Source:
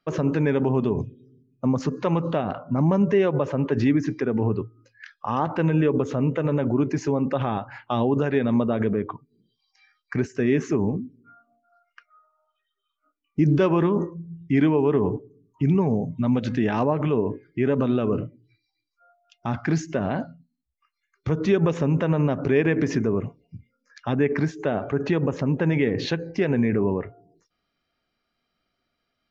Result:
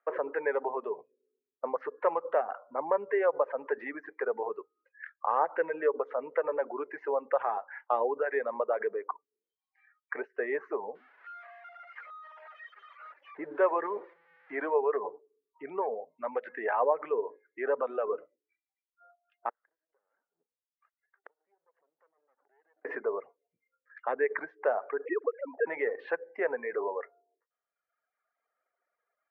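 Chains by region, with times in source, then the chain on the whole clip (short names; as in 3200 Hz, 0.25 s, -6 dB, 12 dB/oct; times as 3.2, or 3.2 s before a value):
10.95–14.74 switching spikes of -22.5 dBFS + high shelf 4000 Hz -5.5 dB
19.49–22.85 minimum comb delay 0.64 ms + compressor 4:1, threshold -33 dBFS + flipped gate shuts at -34 dBFS, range -29 dB
25.05–25.67 sine-wave speech + high shelf 2100 Hz -10 dB
whole clip: reverb removal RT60 1.3 s; elliptic band-pass 470–1900 Hz, stop band 70 dB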